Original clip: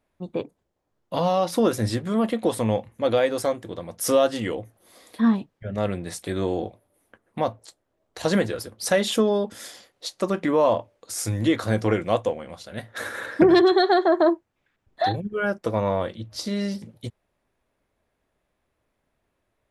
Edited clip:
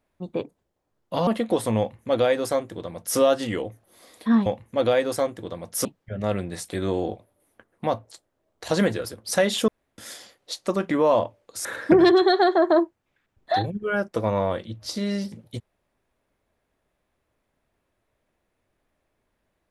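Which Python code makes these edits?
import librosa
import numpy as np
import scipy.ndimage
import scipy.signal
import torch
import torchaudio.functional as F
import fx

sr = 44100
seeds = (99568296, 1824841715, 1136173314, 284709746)

y = fx.edit(x, sr, fx.cut(start_s=1.27, length_s=0.93),
    fx.duplicate(start_s=2.72, length_s=1.39, to_s=5.39),
    fx.room_tone_fill(start_s=9.22, length_s=0.3),
    fx.cut(start_s=11.19, length_s=1.96), tone=tone)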